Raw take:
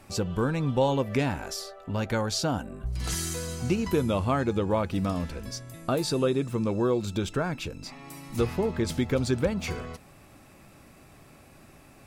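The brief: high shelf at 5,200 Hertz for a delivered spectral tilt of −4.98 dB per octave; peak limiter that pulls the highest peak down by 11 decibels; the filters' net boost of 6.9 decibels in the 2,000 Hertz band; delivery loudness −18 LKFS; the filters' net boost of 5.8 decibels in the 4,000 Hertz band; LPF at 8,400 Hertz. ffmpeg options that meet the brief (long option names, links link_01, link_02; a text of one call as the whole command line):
ffmpeg -i in.wav -af "lowpass=8400,equalizer=frequency=2000:width_type=o:gain=8,equalizer=frequency=4000:width_type=o:gain=9,highshelf=frequency=5200:gain=-8,volume=13.5dB,alimiter=limit=-8dB:level=0:latency=1" out.wav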